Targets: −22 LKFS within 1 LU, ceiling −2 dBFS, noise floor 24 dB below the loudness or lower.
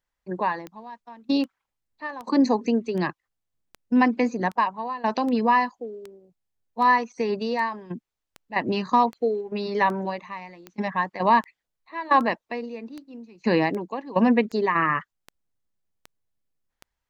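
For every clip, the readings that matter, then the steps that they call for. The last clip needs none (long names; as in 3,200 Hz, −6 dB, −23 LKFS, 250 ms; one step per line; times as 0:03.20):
number of clicks 22; integrated loudness −24.0 LKFS; sample peak −7.5 dBFS; target loudness −22.0 LKFS
→ click removal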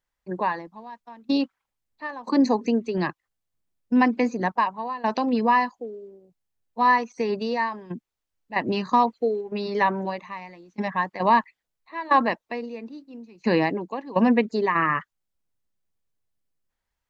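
number of clicks 0; integrated loudness −24.0 LKFS; sample peak −7.5 dBFS; target loudness −22.0 LKFS
→ level +2 dB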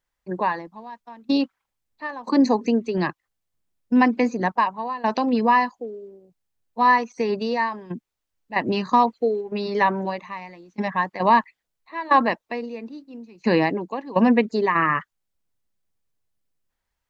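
integrated loudness −22.0 LKFS; sample peak −5.5 dBFS; background noise floor −81 dBFS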